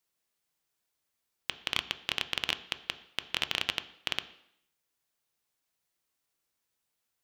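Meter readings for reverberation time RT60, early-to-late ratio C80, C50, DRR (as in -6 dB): 0.70 s, 17.5 dB, 15.0 dB, 11.0 dB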